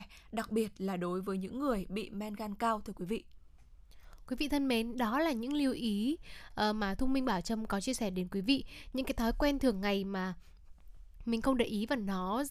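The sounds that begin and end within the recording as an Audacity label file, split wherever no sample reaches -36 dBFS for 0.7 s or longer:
4.290000	10.320000	sound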